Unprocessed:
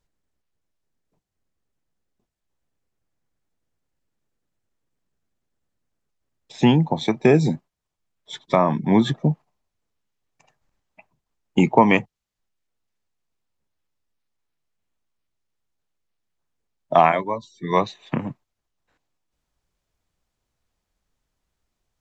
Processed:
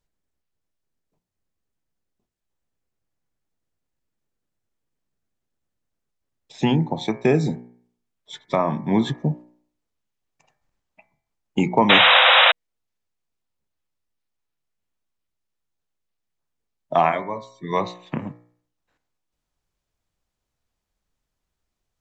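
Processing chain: de-hum 60.04 Hz, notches 39; painted sound noise, 11.89–12.52 s, 480–3900 Hz -11 dBFS; trim -2.5 dB

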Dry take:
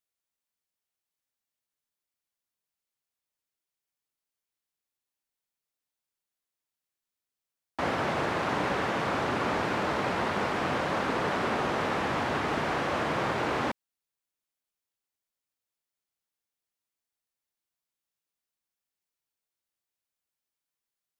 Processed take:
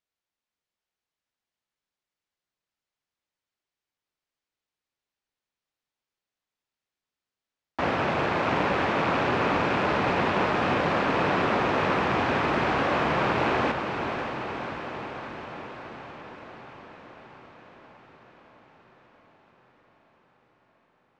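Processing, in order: rattle on loud lows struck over -36 dBFS, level -27 dBFS; distance through air 110 m; echo that smears into a reverb 552 ms, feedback 69%, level -7 dB; trim +3.5 dB

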